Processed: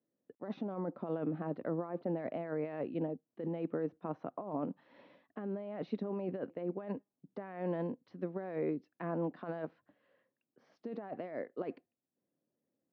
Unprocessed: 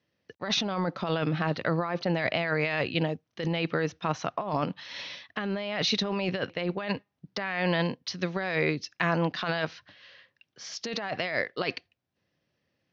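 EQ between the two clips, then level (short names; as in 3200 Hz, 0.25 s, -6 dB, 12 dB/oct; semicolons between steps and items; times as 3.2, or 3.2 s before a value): ladder band-pass 290 Hz, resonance 50%; bell 230 Hz -8 dB 1.6 oct; +9.5 dB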